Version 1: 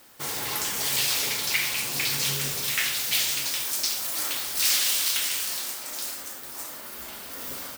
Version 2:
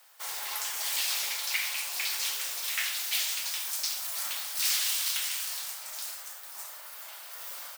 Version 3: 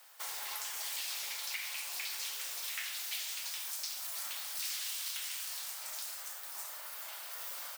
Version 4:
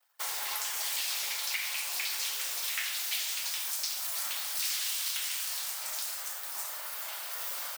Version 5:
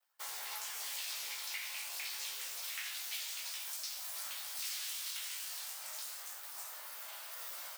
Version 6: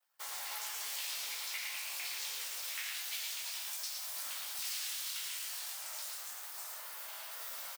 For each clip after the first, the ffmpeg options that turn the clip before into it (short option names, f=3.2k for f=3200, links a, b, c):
-af "highpass=f=640:w=0.5412,highpass=f=640:w=1.3066,volume=-5dB"
-af "acompressor=threshold=-39dB:ratio=3"
-af "anlmdn=0.000631,volume=6dB"
-af "flanger=delay=15.5:depth=4.5:speed=0.27,volume=-5dB"
-af "aecho=1:1:111:0.631"